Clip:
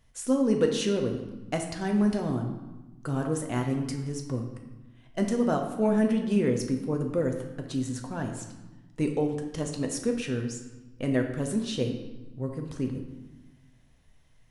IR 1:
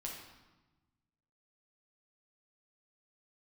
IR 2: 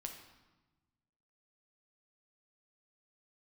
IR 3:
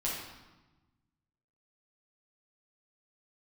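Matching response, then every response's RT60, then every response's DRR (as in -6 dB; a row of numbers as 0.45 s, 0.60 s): 2; 1.1 s, 1.1 s, 1.1 s; -2.5 dB, 3.0 dB, -6.5 dB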